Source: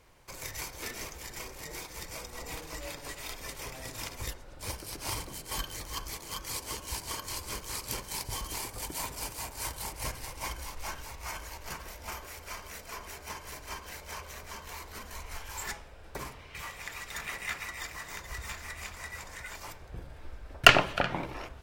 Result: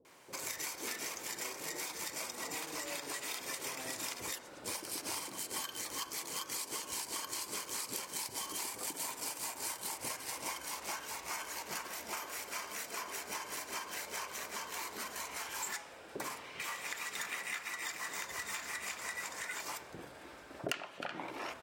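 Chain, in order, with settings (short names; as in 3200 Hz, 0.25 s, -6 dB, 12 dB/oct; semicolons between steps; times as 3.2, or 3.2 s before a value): Chebyshev high-pass 290 Hz, order 2; bell 8000 Hz +3.5 dB 0.6 oct; bands offset in time lows, highs 50 ms, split 510 Hz; compressor 8:1, threshold -41 dBFS, peak gain reduction 29 dB; gain +4.5 dB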